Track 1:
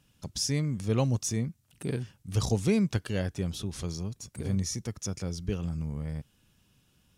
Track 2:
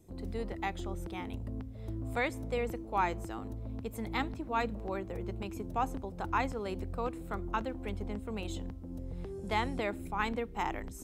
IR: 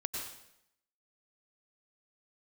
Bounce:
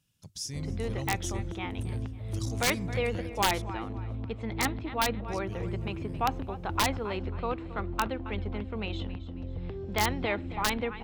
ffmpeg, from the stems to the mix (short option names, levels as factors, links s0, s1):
-filter_complex "[0:a]equalizer=f=160:t=o:w=0.47:g=6,volume=0.188,asplit=3[s0][s1][s2];[s0]atrim=end=3.62,asetpts=PTS-STARTPTS,afade=t=out:st=3.616:d=0.004:c=hsin[s3];[s1]atrim=start=3.62:end=5.28,asetpts=PTS-STARTPTS,volume=0[s4];[s2]atrim=start=5.28,asetpts=PTS-STARTPTS,afade=t=in:d=0.004:c=hsin[s5];[s3][s4][s5]concat=n=3:v=0:a=1,asplit=2[s6][s7];[s7]volume=0.0668[s8];[1:a]lowpass=f=3600:w=0.5412,lowpass=f=3600:w=1.3066,adelay=450,volume=1.33,asplit=2[s9][s10];[s10]volume=0.168[s11];[s8][s11]amix=inputs=2:normalize=0,aecho=0:1:270|540|810|1080|1350:1|0.34|0.116|0.0393|0.0134[s12];[s6][s9][s12]amix=inputs=3:normalize=0,highshelf=f=2400:g=9.5,aeval=exprs='(mod(6.31*val(0)+1,2)-1)/6.31':c=same,equalizer=f=100:w=3.7:g=8"